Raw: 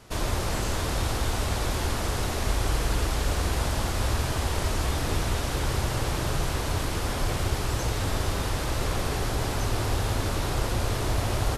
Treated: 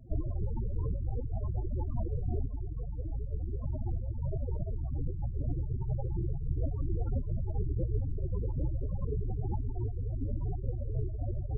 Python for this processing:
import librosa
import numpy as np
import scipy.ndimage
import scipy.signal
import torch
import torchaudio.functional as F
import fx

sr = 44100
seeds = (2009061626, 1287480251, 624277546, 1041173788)

y = fx.bessel_lowpass(x, sr, hz=2200.0, order=8, at=(7.12, 7.97), fade=0.02)
y = fx.over_compress(y, sr, threshold_db=-29.0, ratio=-0.5)
y = fx.spec_topn(y, sr, count=8)